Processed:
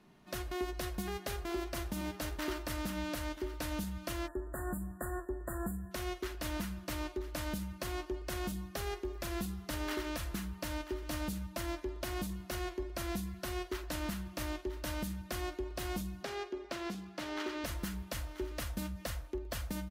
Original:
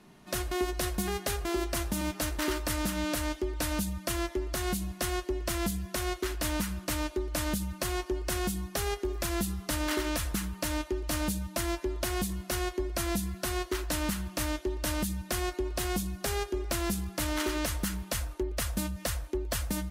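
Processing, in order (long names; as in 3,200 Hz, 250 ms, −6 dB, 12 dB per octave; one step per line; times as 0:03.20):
parametric band 9,000 Hz −6 dB 1.2 octaves
single-tap delay 983 ms −13 dB
0:04.28–0:05.91: time-frequency box erased 1,900–7,000 Hz
0:16.23–0:17.64: three-way crossover with the lows and the highs turned down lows −20 dB, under 160 Hz, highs −14 dB, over 6,400 Hz
level −6.5 dB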